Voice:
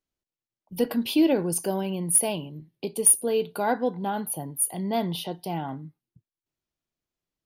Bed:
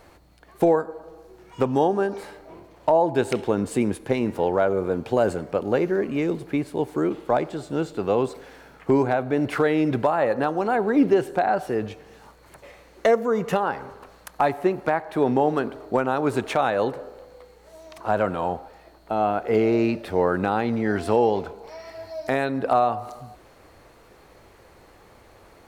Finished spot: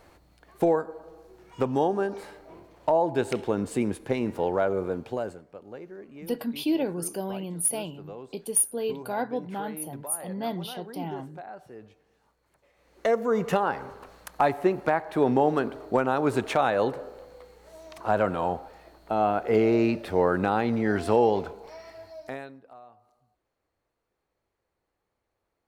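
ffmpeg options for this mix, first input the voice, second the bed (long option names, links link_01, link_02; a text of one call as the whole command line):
ffmpeg -i stem1.wav -i stem2.wav -filter_complex "[0:a]adelay=5500,volume=-5dB[link_01];[1:a]volume=14.5dB,afade=type=out:start_time=4.81:duration=0.62:silence=0.158489,afade=type=in:start_time=12.74:duration=0.61:silence=0.11885,afade=type=out:start_time=21.41:duration=1.21:silence=0.0398107[link_02];[link_01][link_02]amix=inputs=2:normalize=0" out.wav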